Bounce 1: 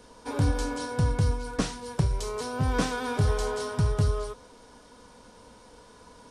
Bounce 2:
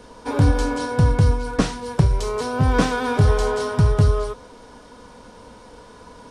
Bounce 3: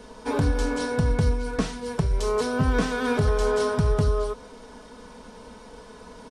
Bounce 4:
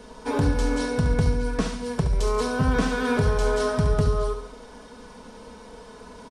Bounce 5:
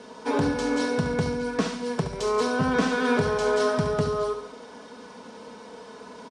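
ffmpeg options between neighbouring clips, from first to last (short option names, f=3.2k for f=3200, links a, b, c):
-af "highshelf=f=4.3k:g=-7,volume=8.5dB"
-af "aecho=1:1:4.6:0.44,alimiter=limit=-11dB:level=0:latency=1:release=315,volume=-1.5dB"
-af "aecho=1:1:70|140|210|280|350|420:0.355|0.177|0.0887|0.0444|0.0222|0.0111"
-af "highpass=180,lowpass=7.6k,volume=1.5dB"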